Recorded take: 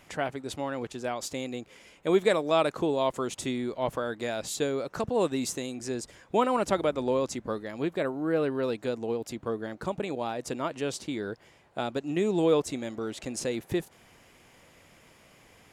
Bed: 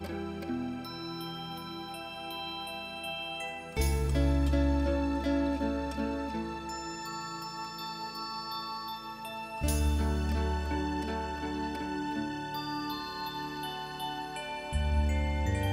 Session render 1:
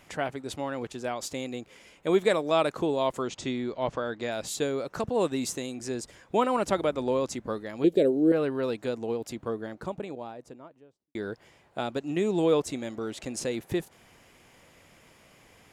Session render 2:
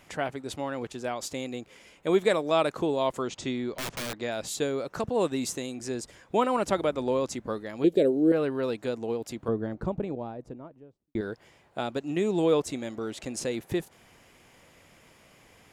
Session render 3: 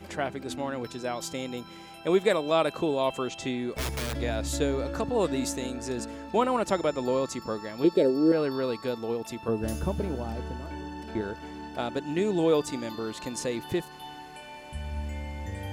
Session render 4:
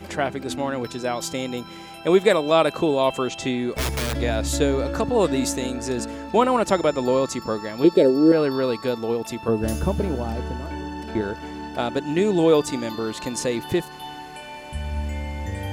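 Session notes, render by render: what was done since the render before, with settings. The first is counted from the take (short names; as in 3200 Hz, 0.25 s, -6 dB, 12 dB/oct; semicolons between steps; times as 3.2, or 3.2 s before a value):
3.22–4.32 LPF 6600 Hz 24 dB/oct; 7.84–8.32 EQ curve 120 Hz 0 dB, 460 Hz +12 dB, 1100 Hz -19 dB, 1700 Hz -10 dB, 3200 Hz +3 dB; 9.29–11.15 studio fade out
3.73–4.21 wrapped overs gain 28 dB; 9.48–11.21 tilt -3 dB/oct
add bed -6 dB
gain +6.5 dB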